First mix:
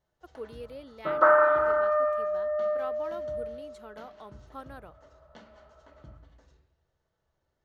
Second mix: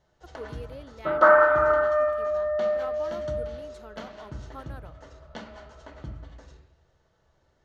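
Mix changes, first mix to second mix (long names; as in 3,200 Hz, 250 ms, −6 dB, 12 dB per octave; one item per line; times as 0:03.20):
first sound +11.5 dB
second sound: send +7.0 dB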